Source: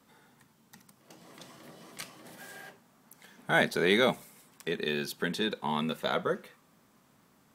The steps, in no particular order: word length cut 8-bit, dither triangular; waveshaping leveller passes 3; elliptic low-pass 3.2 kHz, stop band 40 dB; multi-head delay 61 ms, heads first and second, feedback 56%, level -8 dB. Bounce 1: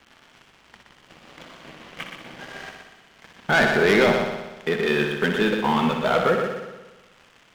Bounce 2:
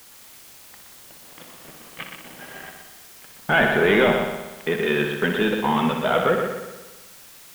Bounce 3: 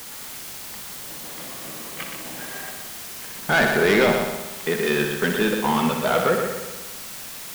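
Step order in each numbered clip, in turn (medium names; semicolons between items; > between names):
word length cut > elliptic low-pass > waveshaping leveller > multi-head delay; waveshaping leveller > elliptic low-pass > word length cut > multi-head delay; elliptic low-pass > word length cut > waveshaping leveller > multi-head delay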